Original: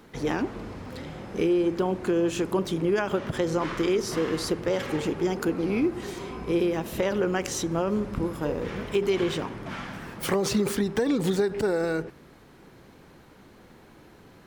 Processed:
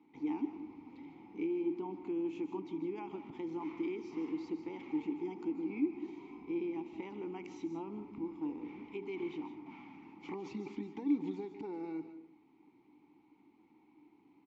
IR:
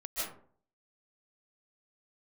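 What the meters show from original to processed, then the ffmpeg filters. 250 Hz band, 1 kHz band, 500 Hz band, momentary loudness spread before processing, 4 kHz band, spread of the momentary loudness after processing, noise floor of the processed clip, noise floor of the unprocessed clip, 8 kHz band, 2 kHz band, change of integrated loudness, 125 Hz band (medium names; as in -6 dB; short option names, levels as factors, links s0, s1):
-10.0 dB, -14.5 dB, -16.5 dB, 11 LU, under -20 dB, 13 LU, -67 dBFS, -52 dBFS, under -30 dB, -19.5 dB, -13.0 dB, -21.5 dB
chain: -filter_complex "[0:a]aresample=16000,aresample=44100,asplit=3[s0][s1][s2];[s0]bandpass=f=300:t=q:w=8,volume=1[s3];[s1]bandpass=f=870:t=q:w=8,volume=0.501[s4];[s2]bandpass=f=2240:t=q:w=8,volume=0.355[s5];[s3][s4][s5]amix=inputs=3:normalize=0,asplit=2[s6][s7];[1:a]atrim=start_sample=2205,highshelf=f=5100:g=10.5[s8];[s7][s8]afir=irnorm=-1:irlink=0,volume=0.188[s9];[s6][s9]amix=inputs=2:normalize=0,volume=0.631"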